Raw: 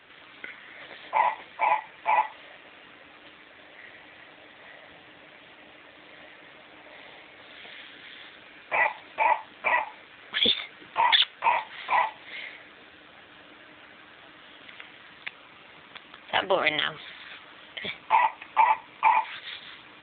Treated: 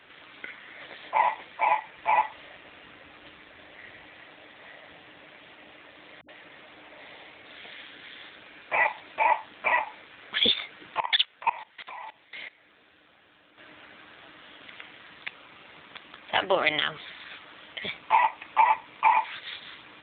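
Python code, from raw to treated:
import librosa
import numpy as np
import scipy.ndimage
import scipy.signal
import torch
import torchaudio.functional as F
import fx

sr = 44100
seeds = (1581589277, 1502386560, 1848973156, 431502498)

y = fx.low_shelf(x, sr, hz=110.0, db=9.5, at=(1.97, 4.07))
y = fx.dispersion(y, sr, late='highs', ms=77.0, hz=320.0, at=(6.21, 7.46))
y = fx.level_steps(y, sr, step_db=20, at=(11.0, 13.58))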